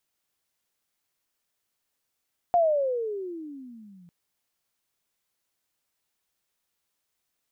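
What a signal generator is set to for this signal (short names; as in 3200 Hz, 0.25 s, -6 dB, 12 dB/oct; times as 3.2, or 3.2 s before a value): gliding synth tone sine, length 1.55 s, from 715 Hz, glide -25 st, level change -32.5 dB, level -16.5 dB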